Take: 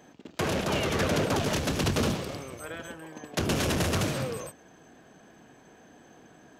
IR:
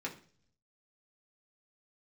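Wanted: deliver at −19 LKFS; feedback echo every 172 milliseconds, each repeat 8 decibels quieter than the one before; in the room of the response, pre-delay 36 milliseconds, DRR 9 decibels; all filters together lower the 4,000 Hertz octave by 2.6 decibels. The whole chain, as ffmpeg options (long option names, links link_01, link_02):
-filter_complex "[0:a]equalizer=frequency=4000:width_type=o:gain=-3.5,aecho=1:1:172|344|516|688|860:0.398|0.159|0.0637|0.0255|0.0102,asplit=2[link_01][link_02];[1:a]atrim=start_sample=2205,adelay=36[link_03];[link_02][link_03]afir=irnorm=-1:irlink=0,volume=-11dB[link_04];[link_01][link_04]amix=inputs=2:normalize=0,volume=9dB"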